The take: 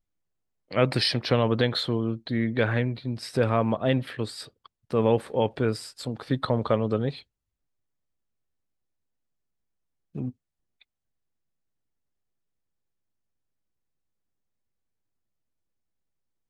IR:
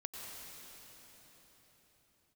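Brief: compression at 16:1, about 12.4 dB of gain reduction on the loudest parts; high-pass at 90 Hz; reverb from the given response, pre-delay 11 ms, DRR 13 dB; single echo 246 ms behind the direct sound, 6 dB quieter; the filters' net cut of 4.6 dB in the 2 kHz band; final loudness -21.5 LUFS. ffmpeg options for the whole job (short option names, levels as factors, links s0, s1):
-filter_complex "[0:a]highpass=90,equalizer=f=2000:t=o:g=-6,acompressor=threshold=0.0355:ratio=16,aecho=1:1:246:0.501,asplit=2[s0][s1];[1:a]atrim=start_sample=2205,adelay=11[s2];[s1][s2]afir=irnorm=-1:irlink=0,volume=0.251[s3];[s0][s3]amix=inputs=2:normalize=0,volume=4.73"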